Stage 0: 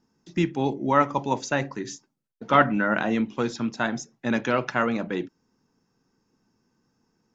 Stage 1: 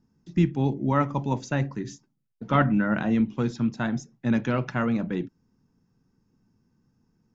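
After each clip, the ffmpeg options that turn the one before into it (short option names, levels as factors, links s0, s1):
-af "bass=f=250:g=14,treble=f=4000:g=-2,volume=0.531"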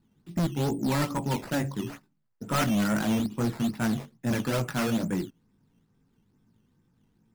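-af "flanger=delay=17.5:depth=3.2:speed=2.6,acrusher=samples=10:mix=1:aa=0.000001:lfo=1:lforange=10:lforate=2.3,asoftclip=type=hard:threshold=0.0501,volume=1.5"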